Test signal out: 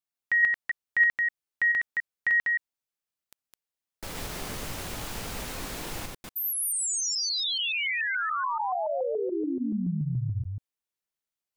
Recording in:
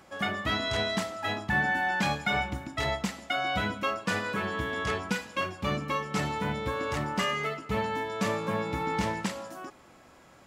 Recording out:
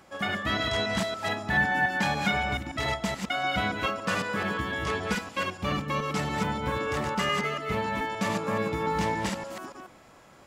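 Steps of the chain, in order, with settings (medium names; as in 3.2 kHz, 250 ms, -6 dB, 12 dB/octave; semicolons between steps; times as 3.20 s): chunks repeated in reverse 143 ms, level -3 dB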